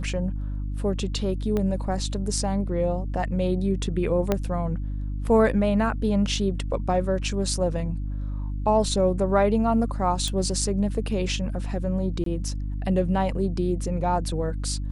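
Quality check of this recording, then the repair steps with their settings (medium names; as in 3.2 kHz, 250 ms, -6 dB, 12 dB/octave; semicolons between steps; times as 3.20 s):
hum 50 Hz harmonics 6 -29 dBFS
1.57 s: pop -15 dBFS
4.32 s: pop -9 dBFS
10.28 s: pop
12.24–12.26 s: dropout 23 ms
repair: de-click; de-hum 50 Hz, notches 6; interpolate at 12.24 s, 23 ms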